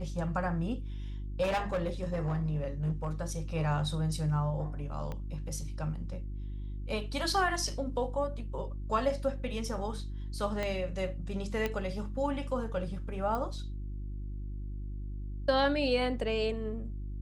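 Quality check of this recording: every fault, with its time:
hum 50 Hz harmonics 7 -38 dBFS
1.42–3.12 s: clipped -26.5 dBFS
5.12 s: pop -26 dBFS
10.63 s: pop -20 dBFS
11.66 s: pop -18 dBFS
13.35 s: pop -23 dBFS

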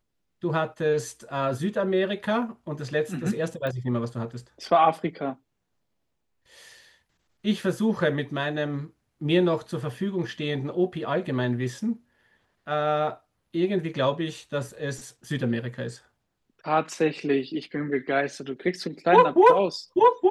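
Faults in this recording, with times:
3.67 s: pop -20 dBFS

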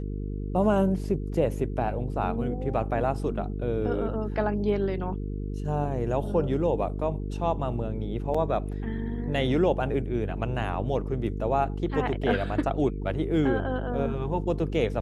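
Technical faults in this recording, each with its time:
buzz 50 Hz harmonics 9 -32 dBFS
8.34–8.35 s: dropout 5.1 ms

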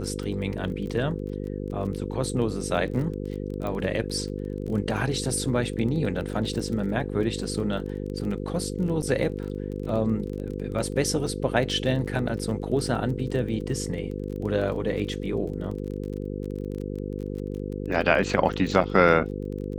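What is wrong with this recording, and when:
buzz 50 Hz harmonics 10 -32 dBFS
crackle 24 per s -33 dBFS
3.67 s: pop -20 dBFS
9.02–9.03 s: dropout 7.2 ms
14.75–14.76 s: dropout 5.2 ms

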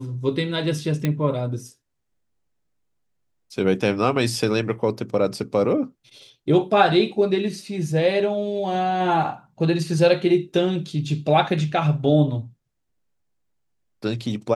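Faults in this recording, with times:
1.05 s: pop -10 dBFS

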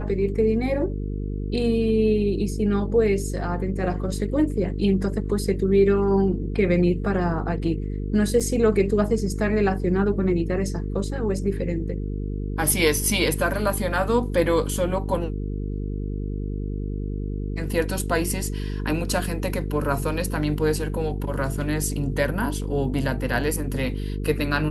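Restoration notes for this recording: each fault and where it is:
buzz 50 Hz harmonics 9 -28 dBFS
8.40–8.41 s: dropout 6.3 ms

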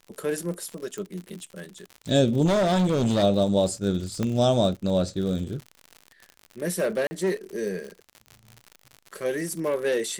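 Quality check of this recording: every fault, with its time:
crackle 88 per s -33 dBFS
0.98 s: pop
2.45–3.24 s: clipped -18.5 dBFS
4.23 s: pop -14 dBFS
7.07–7.11 s: dropout 40 ms

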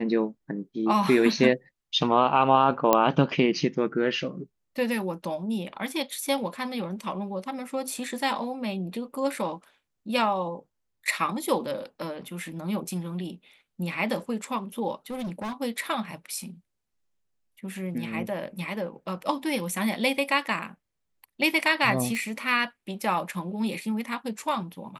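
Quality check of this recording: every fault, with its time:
2.93 s: pop -5 dBFS
15.10–15.53 s: clipped -29.5 dBFS
22.15 s: pop -20 dBFS

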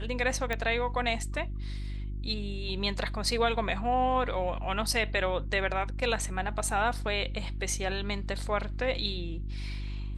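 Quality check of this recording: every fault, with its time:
hum 50 Hz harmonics 7 -35 dBFS
0.53 s: pop -16 dBFS

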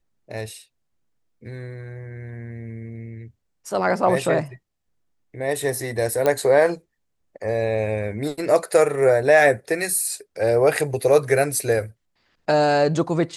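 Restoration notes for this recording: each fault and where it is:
6.26 s: pop -8 dBFS

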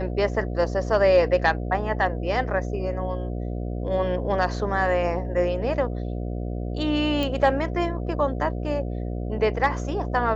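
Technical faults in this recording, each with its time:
buzz 60 Hz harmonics 12 -29 dBFS
7.23 s: pop -14 dBFS

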